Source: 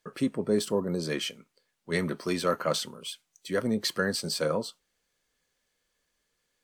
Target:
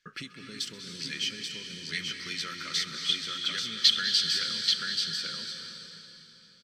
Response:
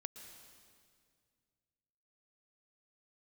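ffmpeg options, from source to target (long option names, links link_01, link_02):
-filter_complex "[0:a]asettb=1/sr,asplit=3[link_01][link_02][link_03];[link_01]atrim=end=3.094[link_04];[link_02]atrim=start=3.09:end=4.24,asetpts=PTS-STARTPTS,afade=type=in:duration=0.004:curve=qsin,afade=type=out:start_time=1.146:duration=0.004:curve=qsin,equalizer=frequency=3300:width_type=o:width=0.7:gain=13[link_05];[link_03]atrim=start=4.236[link_06];[link_04][link_05]acrossfade=duration=0.004:curve1=hsin:curve2=qsin[link_07];[link_07][link_06]acrossfade=duration=0.004:curve1=qsin:curve2=hsin,aecho=1:1:130|834:0.112|0.562,acrossover=split=2300[link_08][link_09];[link_08]acompressor=threshold=-38dB:ratio=10[link_10];[link_10][link_09]amix=inputs=2:normalize=0,firequalizer=gain_entry='entry(160,0);entry(750,-17);entry(1400,7);entry(5500,6);entry(8900,-8)':delay=0.05:min_phase=1[link_11];[1:a]atrim=start_sample=2205,asetrate=26460,aresample=44100[link_12];[link_11][link_12]afir=irnorm=-1:irlink=0"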